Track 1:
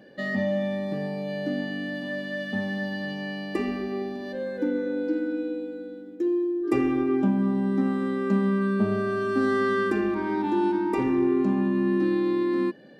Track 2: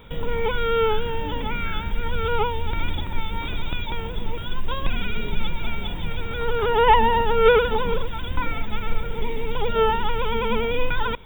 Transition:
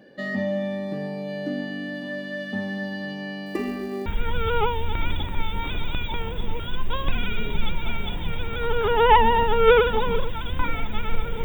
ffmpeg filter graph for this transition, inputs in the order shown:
-filter_complex "[0:a]asettb=1/sr,asplit=3[a][b][c];[a]atrim=end=3.464[d];[b]atrim=start=3.46:end=4.06,asetpts=PTS-STARTPTS,afade=t=in:d=0.004:c=qsin,afade=t=out:st=0.596:d=0.004:c=qsin,acrusher=bits=7:mode=log:mix=0:aa=0.000001[e];[c]atrim=start=4.056[f];[d][e]acrossfade=d=0.004:c1=hsin:c2=qsin[g];[g][f]acrossfade=d=0.004:c1=qsin:c2=hsin,apad=whole_dur=11.44,atrim=end=11.44,atrim=end=4.062[h];[1:a]atrim=start=1.838:end=9.22[i];[h][i]acrossfade=d=0.004:c1=hsin:c2=hsin"

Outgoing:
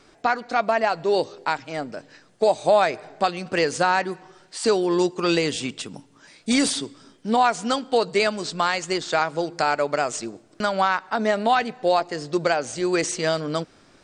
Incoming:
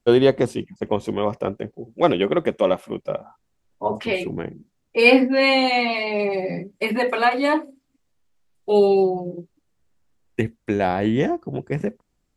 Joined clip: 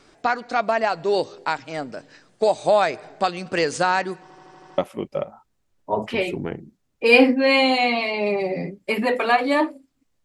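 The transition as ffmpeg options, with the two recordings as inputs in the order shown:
-filter_complex "[0:a]apad=whole_dur=10.24,atrim=end=10.24,asplit=7[a][b][c][d][e][f][g];[a]atrim=end=4.302[h];[b]atrim=start=4.218:end=4.302[i];[c]atrim=start=4.218:end=4.302[j];[d]atrim=start=4.218:end=4.302[k];[e]atrim=start=4.218:end=4.302[l];[f]atrim=start=4.218:end=4.302[m];[g]atrim=start=4.218:end=4.302[n];[1:a]atrim=start=2.708:end=8.17[o];[h][i]acrossfade=d=0.004:c1=hsin:c2=hsin[p];[p][j]acrossfade=d=0.004:c1=hsin:c2=hsin[q];[q][k]acrossfade=d=0.004:c1=hsin:c2=hsin[r];[r][l]acrossfade=d=0.004:c1=hsin:c2=hsin[s];[s][m]acrossfade=d=0.004:c1=hsin:c2=hsin[t];[t][n]acrossfade=d=0.004:c1=hsin:c2=hsin[u];[u][o]acrossfade=d=0.004:c1=hsin:c2=hsin"

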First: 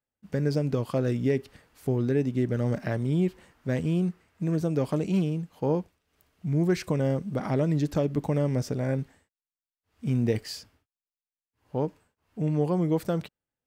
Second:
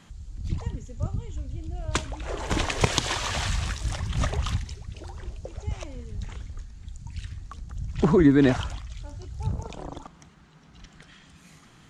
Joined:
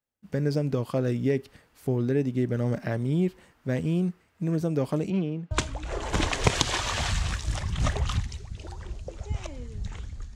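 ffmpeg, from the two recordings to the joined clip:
-filter_complex "[0:a]asettb=1/sr,asplit=3[a][b][c];[a]atrim=end=5.104[d];[b]atrim=start=5.1:end=5.51,asetpts=PTS-STARTPTS,afade=t=in:d=0.004:c=qsin,afade=t=out:st=0.406:d=0.004:c=qsin,highpass=170,lowpass=3k[e];[c]atrim=start=5.506[f];[d][e]acrossfade=d=0.004:c1=hsin:c2=qsin[g];[g][f]acrossfade=d=0.004:c1=qsin:c2=hsin,apad=whole_dur=10.35,atrim=end=10.35,atrim=end=5.512[h];[1:a]atrim=start=1.878:end=6.72[i];[h][i]acrossfade=d=0.004:c1=hsin:c2=hsin"

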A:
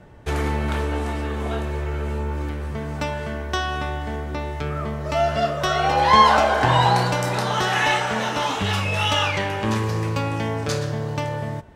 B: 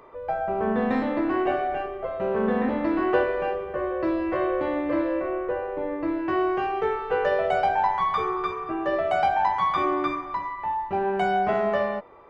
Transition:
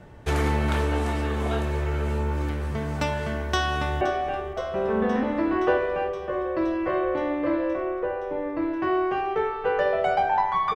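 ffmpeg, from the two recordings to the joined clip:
-filter_complex "[0:a]apad=whole_dur=10.75,atrim=end=10.75,atrim=end=4.012[a];[1:a]atrim=start=1.468:end=8.21[b];[a][b]acrossfade=d=0.004:c1=hsin:c2=hsin,asplit=2[c][d];[d]afade=t=in:st=3.4:d=0.01,afade=t=out:st=4.01:d=0.01,aecho=0:1:520|1040|1560|2080|2600|3120|3640|4160|4680|5200|5720:0.199526|0.149645|0.112234|0.0841751|0.0631313|0.0473485|0.0355114|0.0266335|0.0199752|0.0149814|0.011236[e];[c][e]amix=inputs=2:normalize=0"

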